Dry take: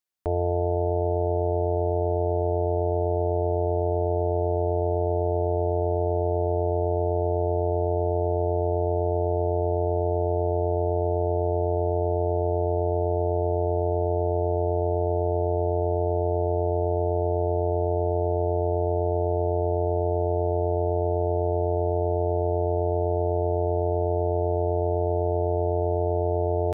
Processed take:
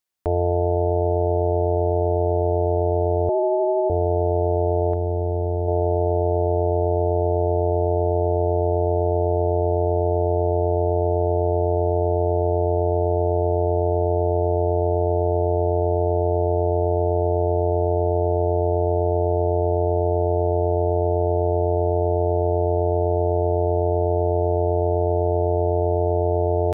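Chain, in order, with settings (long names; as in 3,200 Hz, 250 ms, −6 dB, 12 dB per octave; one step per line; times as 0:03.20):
0:03.29–0:03.90: three sine waves on the formant tracks
0:04.93–0:05.68: dynamic equaliser 680 Hz, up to −6 dB, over −36 dBFS, Q 0.73
level +4 dB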